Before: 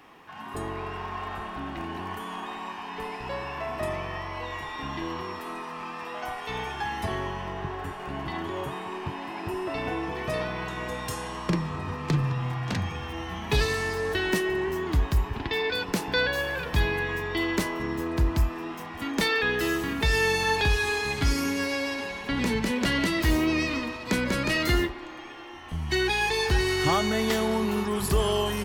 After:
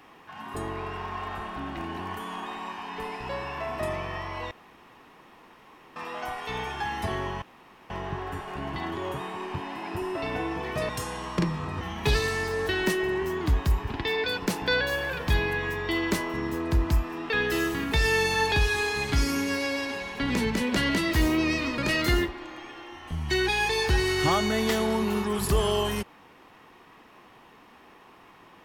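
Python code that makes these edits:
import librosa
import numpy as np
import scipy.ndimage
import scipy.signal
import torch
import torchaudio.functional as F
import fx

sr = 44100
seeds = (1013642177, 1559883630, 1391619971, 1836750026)

y = fx.edit(x, sr, fx.room_tone_fill(start_s=4.51, length_s=1.45),
    fx.insert_room_tone(at_s=7.42, length_s=0.48),
    fx.cut(start_s=10.41, length_s=0.59),
    fx.cut(start_s=11.92, length_s=1.35),
    fx.cut(start_s=18.76, length_s=0.63),
    fx.cut(start_s=23.87, length_s=0.52), tone=tone)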